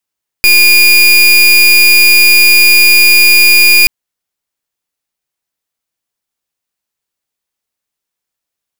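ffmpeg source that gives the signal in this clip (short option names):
-f lavfi -i "aevalsrc='0.562*(2*lt(mod(2430*t,1),0.31)-1)':d=3.43:s=44100"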